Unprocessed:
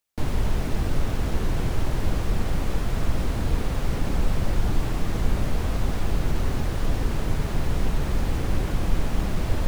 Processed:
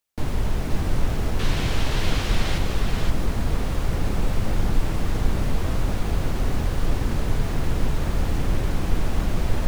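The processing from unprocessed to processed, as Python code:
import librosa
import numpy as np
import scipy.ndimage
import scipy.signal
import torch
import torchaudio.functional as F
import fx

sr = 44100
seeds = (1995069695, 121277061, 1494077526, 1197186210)

y = fx.peak_eq(x, sr, hz=3400.0, db=11.0, octaves=2.3, at=(1.39, 2.58))
y = y + 10.0 ** (-5.0 / 20.0) * np.pad(y, (int(525 * sr / 1000.0), 0))[:len(y)]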